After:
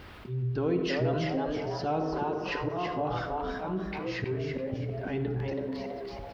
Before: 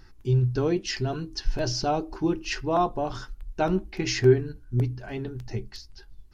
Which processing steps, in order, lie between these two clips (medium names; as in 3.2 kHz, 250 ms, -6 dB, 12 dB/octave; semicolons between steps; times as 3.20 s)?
gate -41 dBFS, range -12 dB; high-pass 50 Hz 24 dB/octave; treble shelf 4.3 kHz +12 dB; slow attack 536 ms; word length cut 10-bit, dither triangular; distance through air 420 m; frequency-shifting echo 327 ms, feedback 34%, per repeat +140 Hz, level -5 dB; reverberation RT60 1.1 s, pre-delay 54 ms, DRR 8 dB; level flattener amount 50%; trim -2.5 dB